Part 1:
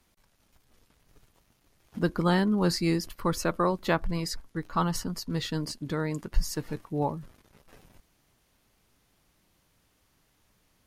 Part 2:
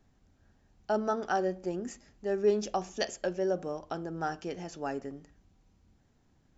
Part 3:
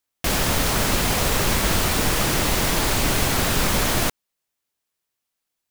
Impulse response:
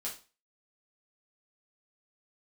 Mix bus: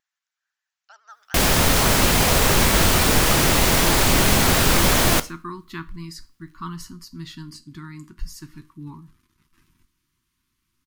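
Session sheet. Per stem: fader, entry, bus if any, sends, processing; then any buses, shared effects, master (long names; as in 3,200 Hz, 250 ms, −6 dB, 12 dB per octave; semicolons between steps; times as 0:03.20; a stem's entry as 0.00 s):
−7.0 dB, 1.85 s, send −8 dB, elliptic band-stop filter 350–1,000 Hz, stop band 40 dB
−6.5 dB, 0.00 s, no send, high-pass filter 1,300 Hz 24 dB per octave; pitch vibrato 13 Hz 99 cents
+2.5 dB, 1.10 s, send −11.5 dB, no processing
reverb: on, RT60 0.35 s, pre-delay 6 ms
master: no processing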